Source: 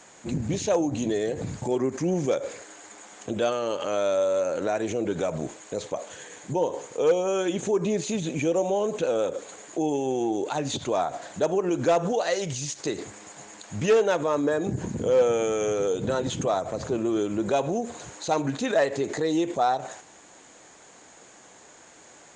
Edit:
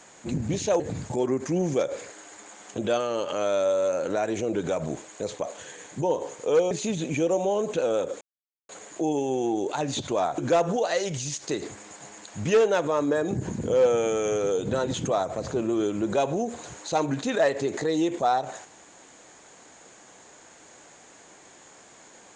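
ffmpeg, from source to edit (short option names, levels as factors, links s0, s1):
-filter_complex "[0:a]asplit=5[s0][s1][s2][s3][s4];[s0]atrim=end=0.802[s5];[s1]atrim=start=1.318:end=7.232[s6];[s2]atrim=start=7.958:end=9.46,asetpts=PTS-STARTPTS,afade=t=out:st=1.498:d=0.004:c=hsin,apad=pad_dur=0.48[s7];[s3]atrim=start=9.46:end=11.152,asetpts=PTS-STARTPTS,afade=t=in:d=0.004:c=hsin[s8];[s4]atrim=start=11.738[s9];[s5][s6]acrossfade=d=0.004:c1=hsin:c2=hsin[s10];[s7][s8]concat=n=2:v=0:a=1[s11];[s10][s11]acrossfade=d=0.004:c1=hsin:c2=hsin[s12];[s12][s9]acrossfade=d=0.004:c1=hsin:c2=hsin"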